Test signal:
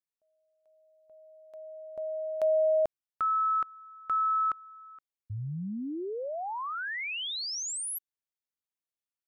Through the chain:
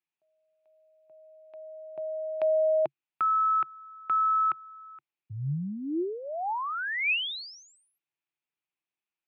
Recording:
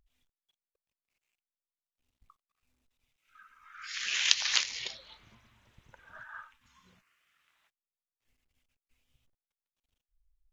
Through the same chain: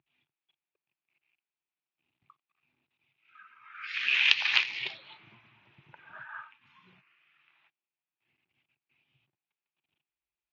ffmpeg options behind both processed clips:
-af "highpass=f=120:w=0.5412,highpass=f=120:w=1.3066,equalizer=f=140:t=q:w=4:g=6,equalizer=f=240:t=q:w=4:g=-5,equalizer=f=340:t=q:w=4:g=7,equalizer=f=510:t=q:w=4:g=-8,equalizer=f=850:t=q:w=4:g=4,equalizer=f=2.5k:t=q:w=4:g=9,lowpass=f=3.6k:w=0.5412,lowpass=f=3.6k:w=1.3066,volume=2dB"

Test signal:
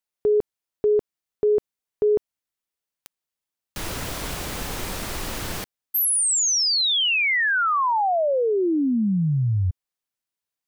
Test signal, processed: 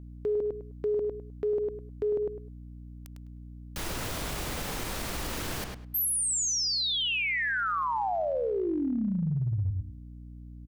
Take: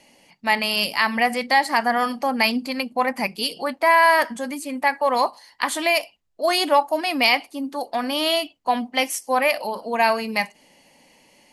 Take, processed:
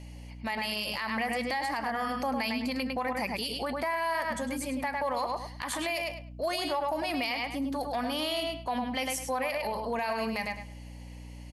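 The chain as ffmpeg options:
-filter_complex "[0:a]asplit=2[a][b];[b]adelay=103,lowpass=f=4k:p=1,volume=-6dB,asplit=2[c][d];[d]adelay=103,lowpass=f=4k:p=1,volume=0.2,asplit=2[e][f];[f]adelay=103,lowpass=f=4k:p=1,volume=0.2[g];[a][c][e][g]amix=inputs=4:normalize=0,aeval=exprs='val(0)+0.00891*(sin(2*PI*60*n/s)+sin(2*PI*2*60*n/s)/2+sin(2*PI*3*60*n/s)/3+sin(2*PI*4*60*n/s)/4+sin(2*PI*5*60*n/s)/5)':c=same,acompressor=threshold=-23dB:ratio=6:attack=0.14:release=141:knee=6:detection=peak,volume=-2dB"

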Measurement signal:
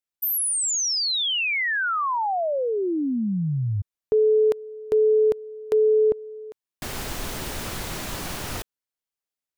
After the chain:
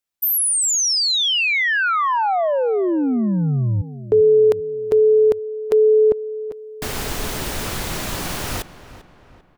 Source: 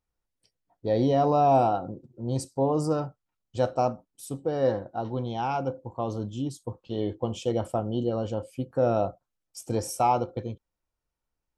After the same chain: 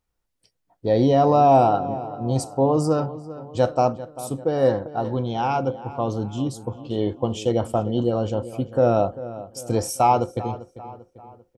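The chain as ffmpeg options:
-filter_complex "[0:a]asplit=2[a][b];[b]adelay=394,lowpass=f=2.7k:p=1,volume=-15dB,asplit=2[c][d];[d]adelay=394,lowpass=f=2.7k:p=1,volume=0.48,asplit=2[e][f];[f]adelay=394,lowpass=f=2.7k:p=1,volume=0.48,asplit=2[g][h];[h]adelay=394,lowpass=f=2.7k:p=1,volume=0.48[i];[a][c][e][g][i]amix=inputs=5:normalize=0,volume=5.5dB"

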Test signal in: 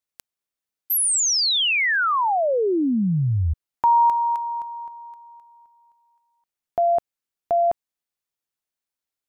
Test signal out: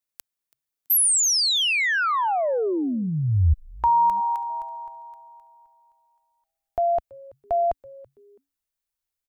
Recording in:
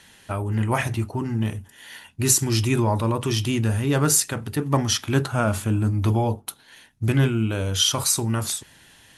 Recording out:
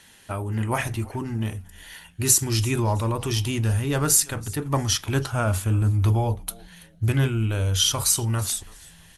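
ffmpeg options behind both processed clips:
-filter_complex "[0:a]asubboost=boost=7:cutoff=68,asplit=3[a][b][c];[b]adelay=330,afreqshift=-140,volume=-22dB[d];[c]adelay=660,afreqshift=-280,volume=-32.2dB[e];[a][d][e]amix=inputs=3:normalize=0,crystalizer=i=0.5:c=0,volume=-2dB"

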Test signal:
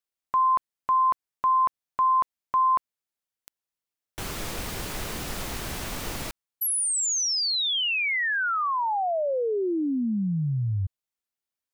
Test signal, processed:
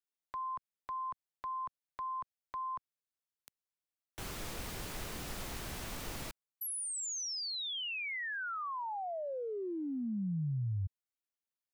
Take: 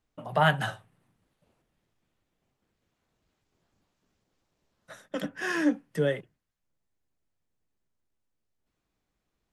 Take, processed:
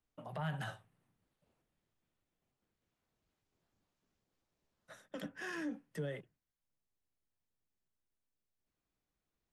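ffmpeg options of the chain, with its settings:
-filter_complex "[0:a]acrossover=split=170[a][b];[b]acompressor=threshold=-28dB:ratio=10:attack=0.63:release=82:knee=2.83:detection=peak[c];[a][c]amix=inputs=2:normalize=0,volume=-8.5dB"

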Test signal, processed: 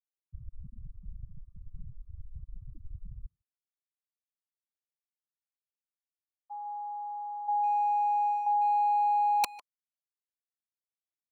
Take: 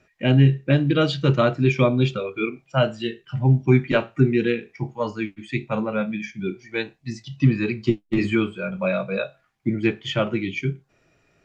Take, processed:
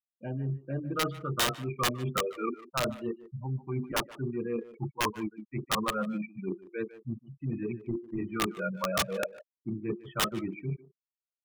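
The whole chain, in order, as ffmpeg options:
-filter_complex "[0:a]bandreject=f=50:t=h:w=6,bandreject=f=100:t=h:w=6,bandreject=f=150:t=h:w=6,bandreject=f=200:t=h:w=6,bandreject=f=250:t=h:w=6,bandreject=f=300:t=h:w=6,bandreject=f=350:t=h:w=6,bandreject=f=400:t=h:w=6,afftfilt=real='re*gte(hypot(re,im),0.0794)':imag='im*gte(hypot(re,im),0.0794)':win_size=1024:overlap=0.75,adynamicequalizer=threshold=0.0141:dfrequency=470:dqfactor=1.7:tfrequency=470:tqfactor=1.7:attack=5:release=100:ratio=0.375:range=3:mode=boostabove:tftype=bell,aecho=1:1:0.9:0.33,areverse,acompressor=threshold=-28dB:ratio=16,areverse,lowpass=f=1.2k:t=q:w=9.5,aeval=exprs='(mod(7.94*val(0)+1,2)-1)/7.94':c=same,asplit=2[a][b];[b]adelay=150,highpass=300,lowpass=3.4k,asoftclip=type=hard:threshold=-28dB,volume=-14dB[c];[a][c]amix=inputs=2:normalize=0,volume=-2.5dB"

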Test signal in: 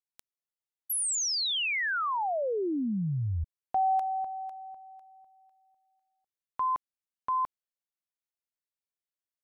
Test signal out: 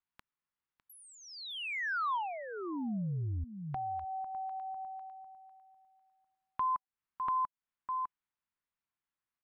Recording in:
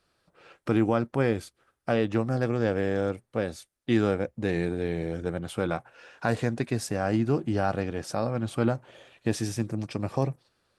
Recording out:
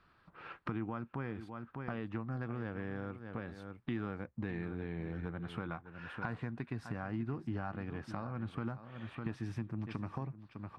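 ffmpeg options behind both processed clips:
-af "aecho=1:1:604:0.178,acompressor=threshold=-40dB:ratio=4:attack=4.7:release=287:knee=1:detection=rms,firequalizer=gain_entry='entry(210,0);entry(530,-10);entry(1000,3);entry(6700,-22)':delay=0.05:min_phase=1,volume=5.5dB"

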